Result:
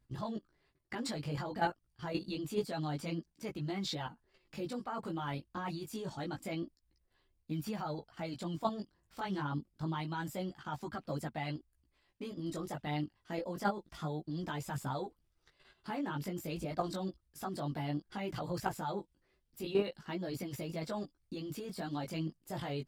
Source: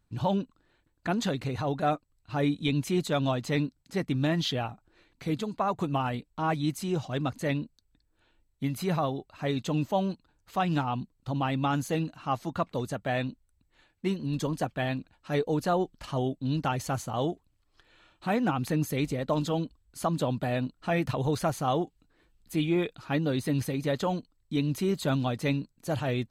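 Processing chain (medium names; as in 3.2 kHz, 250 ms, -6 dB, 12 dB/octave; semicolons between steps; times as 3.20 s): level held to a coarse grid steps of 12 dB; tape speed +15%; chorus voices 2, 0.27 Hz, delay 17 ms, depth 4.1 ms; trim +1 dB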